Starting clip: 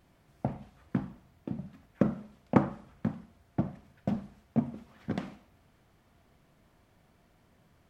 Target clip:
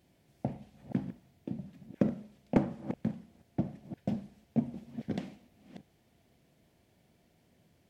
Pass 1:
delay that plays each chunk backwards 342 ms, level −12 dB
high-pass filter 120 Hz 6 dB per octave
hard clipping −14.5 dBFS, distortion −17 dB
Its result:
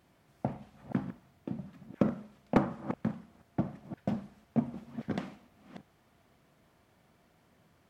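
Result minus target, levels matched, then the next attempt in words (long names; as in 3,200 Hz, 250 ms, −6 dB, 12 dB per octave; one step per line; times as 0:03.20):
1,000 Hz band +5.0 dB
delay that plays each chunk backwards 342 ms, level −12 dB
high-pass filter 120 Hz 6 dB per octave
parametric band 1,200 Hz −13 dB 0.96 octaves
hard clipping −14.5 dBFS, distortion −19 dB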